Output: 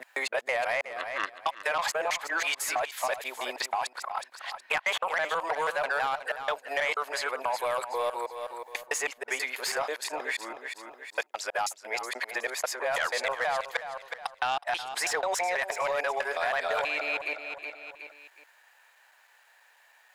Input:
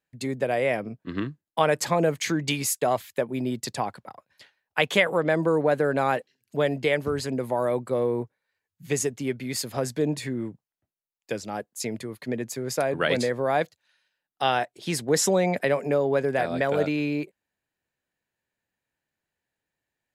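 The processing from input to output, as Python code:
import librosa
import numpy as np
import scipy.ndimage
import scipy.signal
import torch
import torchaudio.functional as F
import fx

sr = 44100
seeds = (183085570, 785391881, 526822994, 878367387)

p1 = fx.local_reverse(x, sr, ms=162.0)
p2 = scipy.signal.sosfilt(scipy.signal.butter(4, 800.0, 'highpass', fs=sr, output='sos'), p1)
p3 = fx.high_shelf(p2, sr, hz=2500.0, db=-10.0)
p4 = fx.over_compress(p3, sr, threshold_db=-36.0, ratio=-1.0)
p5 = p3 + (p4 * librosa.db_to_amplitude(3.0))
p6 = fx.vibrato(p5, sr, rate_hz=3.7, depth_cents=5.4)
p7 = 10.0 ** (-19.5 / 20.0) * np.tanh(p6 / 10.0 ** (-19.5 / 20.0))
p8 = p7 + fx.echo_feedback(p7, sr, ms=368, feedback_pct=23, wet_db=-13, dry=0)
y = fx.band_squash(p8, sr, depth_pct=70)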